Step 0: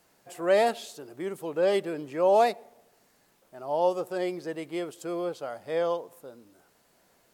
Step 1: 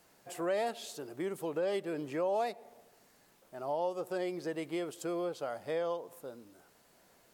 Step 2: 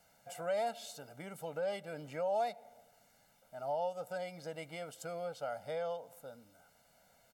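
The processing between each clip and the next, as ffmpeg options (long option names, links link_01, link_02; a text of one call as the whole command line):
ffmpeg -i in.wav -af "acompressor=threshold=-33dB:ratio=3" out.wav
ffmpeg -i in.wav -af "aecho=1:1:1.4:0.92,volume=-5.5dB" out.wav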